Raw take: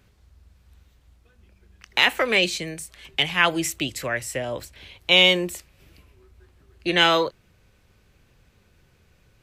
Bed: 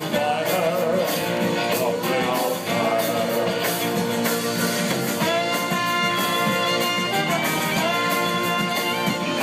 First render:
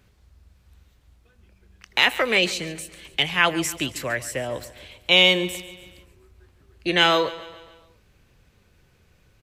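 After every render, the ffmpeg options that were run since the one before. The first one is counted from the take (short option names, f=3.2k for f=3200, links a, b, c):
-af "aecho=1:1:141|282|423|564|705:0.141|0.0749|0.0397|0.021|0.0111"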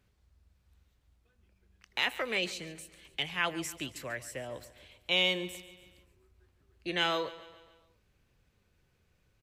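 -af "volume=-12dB"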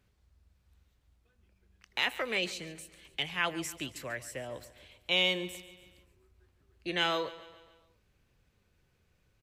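-af anull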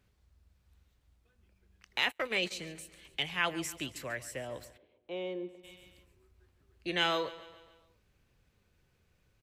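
-filter_complex "[0:a]asplit=3[a][b][c];[a]afade=t=out:st=2.05:d=0.02[d];[b]agate=range=-31dB:threshold=-38dB:ratio=16:release=100:detection=peak,afade=t=in:st=2.05:d=0.02,afade=t=out:st=2.5:d=0.02[e];[c]afade=t=in:st=2.5:d=0.02[f];[d][e][f]amix=inputs=3:normalize=0,asplit=3[g][h][i];[g]afade=t=out:st=4.76:d=0.02[j];[h]bandpass=f=380:t=q:w=1.6,afade=t=in:st=4.76:d=0.02,afade=t=out:st=5.63:d=0.02[k];[i]afade=t=in:st=5.63:d=0.02[l];[j][k][l]amix=inputs=3:normalize=0"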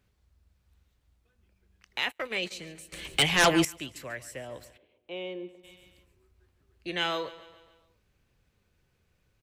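-filter_complex "[0:a]asettb=1/sr,asplit=3[a][b][c];[a]atrim=end=2.924[d];[b]atrim=start=2.92:end=3.65,asetpts=PTS-STARTPTS,afade=t=in:d=0.004:c=qsin,afade=t=out:st=0.726:d=0.004:c=qsin,aeval=exprs='0.188*sin(PI/2*3.55*val(0)/0.188)':c=same[e];[c]atrim=start=3.646[f];[d][e]acrossfade=d=0.004:c1=hsin:c2=qsin[g];[g][f]acrossfade=d=0.004:c1=qsin:c2=hsin,asettb=1/sr,asplit=3[h][i][j];[h]atrim=end=4.664[k];[i]atrim=start=4.66:end=5.52,asetpts=PTS-STARTPTS,afade=t=in:d=0.004:c=qsin,afade=t=out:st=0.856:d=0.004:c=qsin,equalizer=f=2.7k:w=2.1:g=6.5[l];[j]atrim=start=5.516[m];[k][l]acrossfade=d=0.004:c1=hsin:c2=qsin[n];[n][m]acrossfade=d=0.004:c1=qsin:c2=hsin"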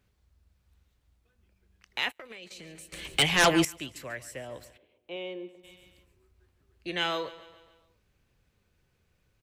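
-filter_complex "[0:a]asettb=1/sr,asplit=3[a][b][c];[a]atrim=end=2.154[d];[b]atrim=start=2.15:end=2.81,asetpts=PTS-STARTPTS,afade=t=in:d=0.004:c=qsin,afade=t=out:st=0.656:d=0.004:c=qsin,acompressor=threshold=-41dB:ratio=16:attack=3.2:release=140:knee=1:detection=peak[e];[c]atrim=start=2.806[f];[d][e]acrossfade=d=0.004:c1=hsin:c2=qsin[g];[g][f]acrossfade=d=0.004:c1=qsin:c2=hsin,asettb=1/sr,asplit=3[h][i][j];[h]atrim=end=5.164[k];[i]atrim=start=5.16:end=5.56,asetpts=PTS-STARTPTS,afade=t=in:d=0.004:c=qsin,afade=t=out:st=0.396:d=0.004:c=qsin,equalizer=f=66:t=o:w=1.8:g=-12[l];[j]atrim=start=5.556[m];[k][l]acrossfade=d=0.004:c1=hsin:c2=qsin[n];[n][m]acrossfade=d=0.004:c1=qsin:c2=hsin"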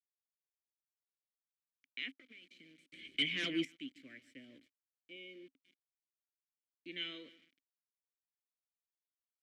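-filter_complex "[0:a]aeval=exprs='val(0)*gte(abs(val(0)),0.00501)':c=same,asplit=3[a][b][c];[a]bandpass=f=270:t=q:w=8,volume=0dB[d];[b]bandpass=f=2.29k:t=q:w=8,volume=-6dB[e];[c]bandpass=f=3.01k:t=q:w=8,volume=-9dB[f];[d][e][f]amix=inputs=3:normalize=0"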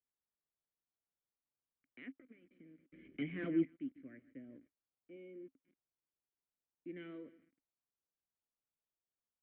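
-af "lowpass=f=1.7k:w=0.5412,lowpass=f=1.7k:w=1.3066,tiltshelf=f=830:g=5"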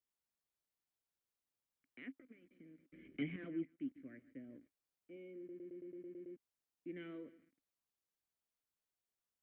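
-filter_complex "[0:a]asplit=12[a][b][c][d][e][f][g][h][i][j][k][l];[a]atrim=end=3.362[m];[b]atrim=start=3.358:end=3.782,asetpts=PTS-STARTPTS,volume=-8.5dB[n];[c]atrim=start=3.778:end=5.492[o];[d]atrim=start=5.378:end=5.492[p];[e]atrim=start=5.378:end=5.492[q];[f]atrim=start=5.378:end=5.492[r];[g]atrim=start=5.378:end=5.492[s];[h]atrim=start=5.378:end=5.492[t];[i]atrim=start=5.378:end=5.492[u];[j]atrim=start=5.378:end=5.492[v];[k]atrim=start=5.378:end=5.492[w];[l]atrim=start=6.368[x];[m][n]acrossfade=d=0.004:c1=hsin:c2=hsin[y];[y][o]acrossfade=d=0.004:c1=hsin:c2=hsin[z];[z][p]acrossfade=d=0.004:c1=hsin:c2=hsin[aa];[aa][q]acrossfade=d=0.004:c1=hsin:c2=hsin[ab];[ab][r]acrossfade=d=0.004:c1=hsin:c2=hsin[ac];[ac][s]acrossfade=d=0.004:c1=hsin:c2=hsin[ad];[ad][t]acrossfade=d=0.004:c1=hsin:c2=hsin[ae];[ae][u]acrossfade=d=0.004:c1=hsin:c2=hsin[af];[af][v]acrossfade=d=0.004:c1=hsin:c2=hsin[ag];[ag][w]acrossfade=d=0.004:c1=hsin:c2=hsin[ah];[ah][x]acrossfade=d=0.004:c1=hsin:c2=hsin"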